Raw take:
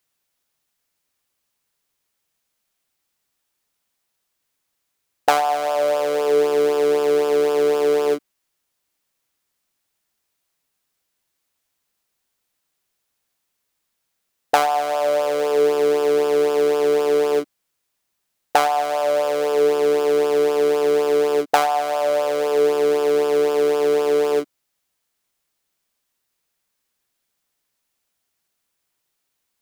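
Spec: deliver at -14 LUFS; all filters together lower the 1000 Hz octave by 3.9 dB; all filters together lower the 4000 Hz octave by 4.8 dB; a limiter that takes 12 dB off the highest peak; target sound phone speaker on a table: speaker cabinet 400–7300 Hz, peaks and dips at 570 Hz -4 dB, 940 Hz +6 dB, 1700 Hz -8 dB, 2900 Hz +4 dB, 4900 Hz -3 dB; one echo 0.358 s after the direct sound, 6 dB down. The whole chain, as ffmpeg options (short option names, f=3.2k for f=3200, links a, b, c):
-af "equalizer=f=1k:t=o:g=-7.5,equalizer=f=4k:t=o:g=-8,alimiter=limit=-15.5dB:level=0:latency=1,highpass=f=400:w=0.5412,highpass=f=400:w=1.3066,equalizer=f=570:t=q:w=4:g=-4,equalizer=f=940:t=q:w=4:g=6,equalizer=f=1.7k:t=q:w=4:g=-8,equalizer=f=2.9k:t=q:w=4:g=4,equalizer=f=4.9k:t=q:w=4:g=-3,lowpass=f=7.3k:w=0.5412,lowpass=f=7.3k:w=1.3066,aecho=1:1:358:0.501,volume=11.5dB"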